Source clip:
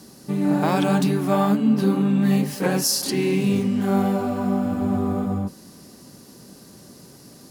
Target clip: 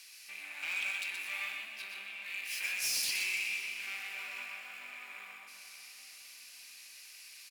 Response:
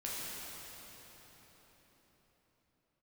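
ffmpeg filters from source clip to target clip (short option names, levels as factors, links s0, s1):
-filter_complex "[0:a]acompressor=threshold=0.1:ratio=6,asoftclip=type=tanh:threshold=0.0596,highpass=f=2400:t=q:w=8.1,asoftclip=type=hard:threshold=0.0501,aecho=1:1:124:0.531,asplit=2[s0][s1];[1:a]atrim=start_sample=2205,adelay=120[s2];[s1][s2]afir=irnorm=-1:irlink=0,volume=0.316[s3];[s0][s3]amix=inputs=2:normalize=0,volume=0.562"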